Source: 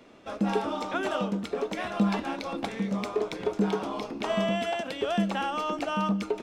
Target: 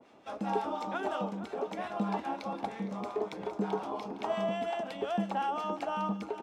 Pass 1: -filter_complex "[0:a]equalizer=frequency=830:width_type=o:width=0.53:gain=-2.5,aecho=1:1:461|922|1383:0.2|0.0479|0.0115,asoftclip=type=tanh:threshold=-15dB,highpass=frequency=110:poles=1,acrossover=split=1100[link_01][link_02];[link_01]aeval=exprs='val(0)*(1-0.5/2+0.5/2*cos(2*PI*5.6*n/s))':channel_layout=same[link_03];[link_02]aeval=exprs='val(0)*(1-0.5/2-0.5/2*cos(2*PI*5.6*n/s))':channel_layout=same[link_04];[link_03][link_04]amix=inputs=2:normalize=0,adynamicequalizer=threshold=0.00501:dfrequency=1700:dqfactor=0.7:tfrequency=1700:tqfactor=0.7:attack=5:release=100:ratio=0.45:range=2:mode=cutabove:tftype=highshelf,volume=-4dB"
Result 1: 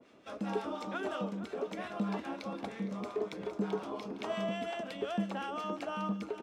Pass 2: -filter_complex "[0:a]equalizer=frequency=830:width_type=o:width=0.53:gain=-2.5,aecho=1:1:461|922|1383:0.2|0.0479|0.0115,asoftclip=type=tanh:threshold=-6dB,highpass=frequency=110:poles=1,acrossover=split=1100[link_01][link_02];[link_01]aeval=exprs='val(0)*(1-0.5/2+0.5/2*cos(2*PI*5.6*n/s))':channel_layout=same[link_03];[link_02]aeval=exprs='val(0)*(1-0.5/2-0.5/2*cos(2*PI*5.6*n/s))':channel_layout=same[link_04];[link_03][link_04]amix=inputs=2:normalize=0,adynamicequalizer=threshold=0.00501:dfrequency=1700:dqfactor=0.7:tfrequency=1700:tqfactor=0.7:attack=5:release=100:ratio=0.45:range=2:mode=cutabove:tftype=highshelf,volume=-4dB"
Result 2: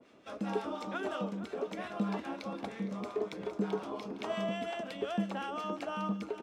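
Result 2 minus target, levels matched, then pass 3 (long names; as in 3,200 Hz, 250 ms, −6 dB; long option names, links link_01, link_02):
1,000 Hz band −4.0 dB
-filter_complex "[0:a]equalizer=frequency=830:width_type=o:width=0.53:gain=7.5,aecho=1:1:461|922|1383:0.2|0.0479|0.0115,asoftclip=type=tanh:threshold=-6dB,highpass=frequency=110:poles=1,acrossover=split=1100[link_01][link_02];[link_01]aeval=exprs='val(0)*(1-0.5/2+0.5/2*cos(2*PI*5.6*n/s))':channel_layout=same[link_03];[link_02]aeval=exprs='val(0)*(1-0.5/2-0.5/2*cos(2*PI*5.6*n/s))':channel_layout=same[link_04];[link_03][link_04]amix=inputs=2:normalize=0,adynamicequalizer=threshold=0.00501:dfrequency=1700:dqfactor=0.7:tfrequency=1700:tqfactor=0.7:attack=5:release=100:ratio=0.45:range=2:mode=cutabove:tftype=highshelf,volume=-4dB"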